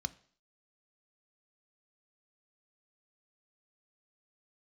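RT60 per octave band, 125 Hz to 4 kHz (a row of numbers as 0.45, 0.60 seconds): 0.45, 0.55, 0.55, 0.50, 0.50, 0.55 seconds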